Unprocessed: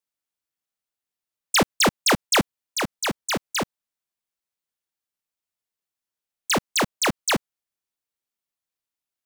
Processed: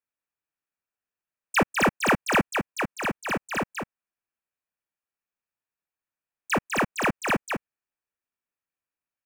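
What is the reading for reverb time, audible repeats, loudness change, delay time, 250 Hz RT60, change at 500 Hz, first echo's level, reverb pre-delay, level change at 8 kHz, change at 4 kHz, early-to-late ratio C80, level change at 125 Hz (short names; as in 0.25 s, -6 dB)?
none, 1, -3.0 dB, 0.201 s, none, -1.0 dB, -5.5 dB, none, -11.5 dB, -11.0 dB, none, -1.5 dB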